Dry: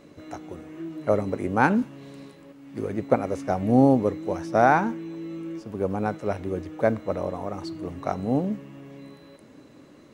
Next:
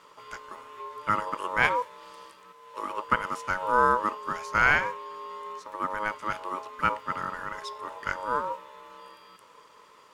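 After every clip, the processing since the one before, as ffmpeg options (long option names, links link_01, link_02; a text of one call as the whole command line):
ffmpeg -i in.wav -af "aeval=exprs='val(0)*sin(2*PI*740*n/s)':channel_layout=same,tiltshelf=frequency=670:gain=-8,volume=-3dB" out.wav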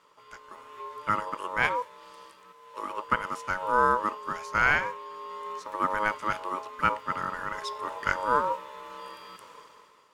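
ffmpeg -i in.wav -af "dynaudnorm=framelen=150:gausssize=9:maxgain=14.5dB,volume=-7.5dB" out.wav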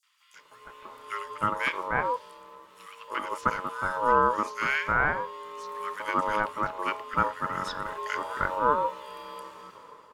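ffmpeg -i in.wav -filter_complex "[0:a]acrossover=split=1700|5900[link_01][link_02][link_03];[link_02]adelay=30[link_04];[link_01]adelay=340[link_05];[link_05][link_04][link_03]amix=inputs=3:normalize=0,volume=2dB" out.wav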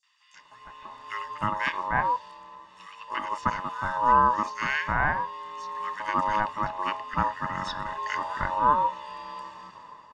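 ffmpeg -i in.wav -af "lowpass=frequency=7000:width=0.5412,lowpass=frequency=7000:width=1.3066,aecho=1:1:1.1:0.69" out.wav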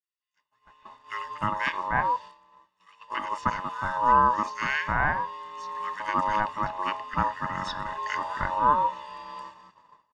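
ffmpeg -i in.wav -af "agate=range=-33dB:threshold=-37dB:ratio=3:detection=peak" out.wav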